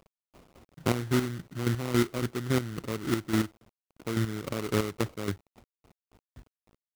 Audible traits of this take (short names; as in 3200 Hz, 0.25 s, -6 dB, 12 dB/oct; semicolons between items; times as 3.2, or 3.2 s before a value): aliases and images of a low sample rate 1700 Hz, jitter 20%; chopped level 3.6 Hz, depth 65%, duty 30%; a quantiser's noise floor 10-bit, dither none